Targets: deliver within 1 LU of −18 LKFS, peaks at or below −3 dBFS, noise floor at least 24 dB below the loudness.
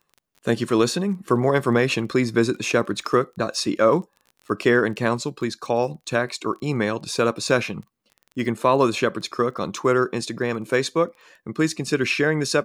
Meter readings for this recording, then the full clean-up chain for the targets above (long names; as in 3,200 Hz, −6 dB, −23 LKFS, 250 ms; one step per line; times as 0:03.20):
crackle rate 22 per second; integrated loudness −22.5 LKFS; sample peak −5.5 dBFS; target loudness −18.0 LKFS
→ click removal
level +4.5 dB
brickwall limiter −3 dBFS